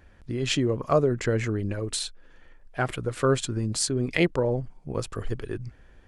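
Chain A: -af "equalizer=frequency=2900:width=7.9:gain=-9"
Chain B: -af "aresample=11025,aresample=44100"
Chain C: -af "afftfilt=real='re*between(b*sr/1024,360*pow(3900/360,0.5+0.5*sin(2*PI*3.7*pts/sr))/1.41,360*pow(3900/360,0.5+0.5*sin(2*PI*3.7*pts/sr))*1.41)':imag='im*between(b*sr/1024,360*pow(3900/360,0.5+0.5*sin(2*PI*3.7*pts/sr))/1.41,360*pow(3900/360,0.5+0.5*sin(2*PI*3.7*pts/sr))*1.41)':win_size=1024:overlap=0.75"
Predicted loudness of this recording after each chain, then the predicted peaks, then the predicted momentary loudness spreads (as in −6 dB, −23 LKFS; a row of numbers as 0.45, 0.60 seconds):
−27.5, −27.5, −33.5 LKFS; −9.5, −8.5, −10.5 dBFS; 12, 11, 20 LU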